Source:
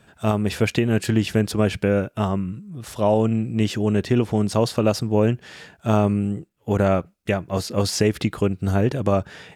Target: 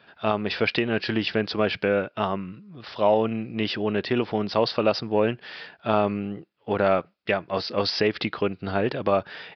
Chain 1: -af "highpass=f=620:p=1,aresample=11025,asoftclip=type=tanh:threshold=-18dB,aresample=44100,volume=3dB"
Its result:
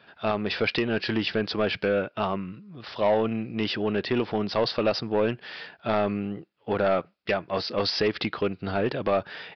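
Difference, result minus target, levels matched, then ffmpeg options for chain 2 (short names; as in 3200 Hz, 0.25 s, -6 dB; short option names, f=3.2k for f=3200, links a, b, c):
soft clip: distortion +17 dB
-af "highpass=f=620:p=1,aresample=11025,asoftclip=type=tanh:threshold=-6.5dB,aresample=44100,volume=3dB"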